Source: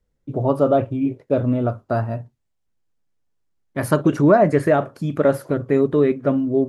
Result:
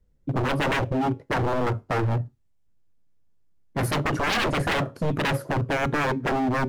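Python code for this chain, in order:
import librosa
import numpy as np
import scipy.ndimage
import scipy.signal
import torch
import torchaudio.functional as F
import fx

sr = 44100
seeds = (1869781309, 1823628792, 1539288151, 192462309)

y = fx.low_shelf(x, sr, hz=300.0, db=10.0)
y = 10.0 ** (-16.5 / 20.0) * (np.abs((y / 10.0 ** (-16.5 / 20.0) + 3.0) % 4.0 - 2.0) - 1.0)
y = fx.comb_fb(y, sr, f0_hz=92.0, decay_s=0.26, harmonics='all', damping=0.0, mix_pct=30)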